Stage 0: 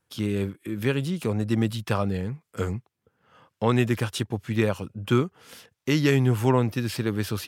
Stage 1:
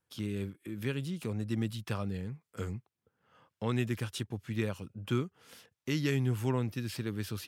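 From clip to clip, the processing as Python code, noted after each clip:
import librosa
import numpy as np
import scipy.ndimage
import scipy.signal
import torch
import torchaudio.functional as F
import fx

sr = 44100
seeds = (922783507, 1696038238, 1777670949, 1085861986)

y = fx.dynamic_eq(x, sr, hz=750.0, q=0.71, threshold_db=-38.0, ratio=4.0, max_db=-6)
y = y * librosa.db_to_amplitude(-8.0)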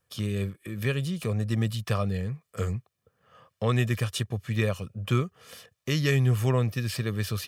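y = x + 0.55 * np.pad(x, (int(1.7 * sr / 1000.0), 0))[:len(x)]
y = y * librosa.db_to_amplitude(6.5)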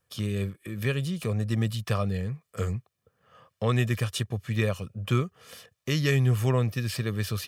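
y = x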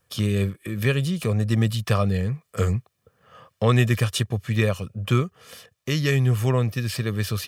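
y = fx.rider(x, sr, range_db=10, speed_s=2.0)
y = y * librosa.db_to_amplitude(4.0)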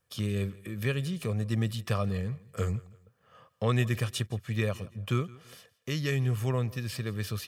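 y = fx.echo_feedback(x, sr, ms=166, feedback_pct=34, wet_db=-21.5)
y = y * librosa.db_to_amplitude(-8.0)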